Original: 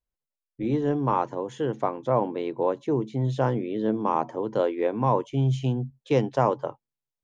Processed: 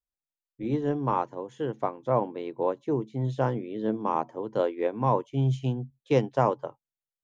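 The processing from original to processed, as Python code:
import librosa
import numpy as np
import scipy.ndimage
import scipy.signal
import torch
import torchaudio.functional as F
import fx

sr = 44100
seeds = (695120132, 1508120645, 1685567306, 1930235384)

y = fx.upward_expand(x, sr, threshold_db=-37.0, expansion=1.5)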